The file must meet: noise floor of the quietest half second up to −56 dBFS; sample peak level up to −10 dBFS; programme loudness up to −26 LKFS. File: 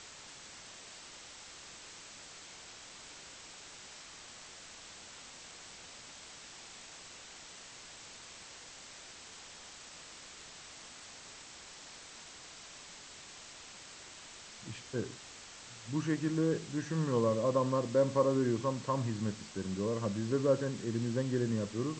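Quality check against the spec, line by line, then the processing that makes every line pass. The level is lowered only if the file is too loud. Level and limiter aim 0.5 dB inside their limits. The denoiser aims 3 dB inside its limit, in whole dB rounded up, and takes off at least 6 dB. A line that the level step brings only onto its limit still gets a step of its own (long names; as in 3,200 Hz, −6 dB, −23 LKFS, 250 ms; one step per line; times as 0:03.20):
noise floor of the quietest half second −51 dBFS: out of spec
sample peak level −17.0 dBFS: in spec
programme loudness −33.5 LKFS: in spec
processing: broadband denoise 8 dB, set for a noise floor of −51 dBFS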